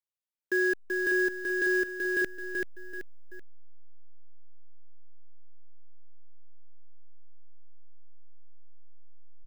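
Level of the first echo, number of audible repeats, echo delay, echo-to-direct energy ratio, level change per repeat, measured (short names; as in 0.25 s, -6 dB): -4.0 dB, 3, 0.383 s, -3.5 dB, -8.5 dB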